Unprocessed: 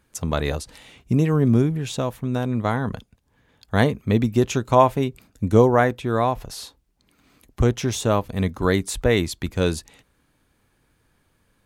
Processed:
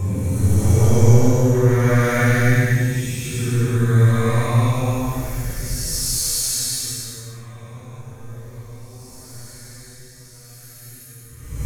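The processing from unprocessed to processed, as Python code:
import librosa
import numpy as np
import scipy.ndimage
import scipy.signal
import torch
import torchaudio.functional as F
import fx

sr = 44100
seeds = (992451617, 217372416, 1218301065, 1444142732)

p1 = fx.curve_eq(x, sr, hz=(100.0, 920.0, 2100.0, 3300.0, 6500.0), db=(0, -16, 2, -6, 12))
p2 = fx.leveller(p1, sr, passes=3)
p3 = p2 + fx.echo_swing(p2, sr, ms=781, ratio=3, feedback_pct=38, wet_db=-21, dry=0)
p4 = fx.paulstretch(p3, sr, seeds[0], factor=5.4, window_s=0.25, from_s=5.4)
p5 = fx.room_shoebox(p4, sr, seeds[1], volume_m3=930.0, walls='furnished', distance_m=4.4)
y = p5 * librosa.db_to_amplitude(-9.0)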